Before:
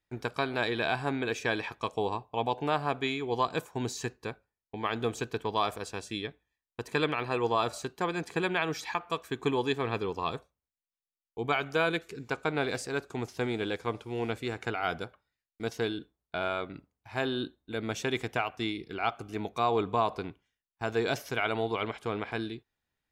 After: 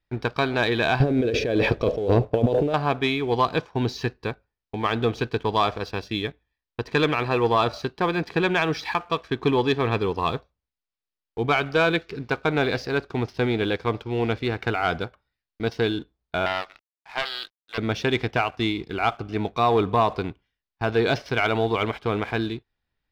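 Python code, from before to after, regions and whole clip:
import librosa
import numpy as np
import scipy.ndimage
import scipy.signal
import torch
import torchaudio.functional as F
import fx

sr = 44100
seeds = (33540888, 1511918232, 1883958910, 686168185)

y = fx.chain(x, sr, fx.low_shelf_res(hz=710.0, db=8.5, q=3.0),
    fx.over_compress(threshold_db=-29.0, ratio=-1.0), at=(1.0, 2.74))
y = fx.chain(y, sr, fx.highpass(hz=720.0, slope=24),
    fx.quant_dither(seeds[0], bits=10, dither='none'),
    fx.doppler_dist(depth_ms=0.24), at=(16.46, 17.78))
y = scipy.signal.sosfilt(scipy.signal.butter(8, 5400.0, 'lowpass', fs=sr, output='sos'), y)
y = fx.low_shelf(y, sr, hz=69.0, db=11.5)
y = fx.leveller(y, sr, passes=1)
y = y * 10.0 ** (4.0 / 20.0)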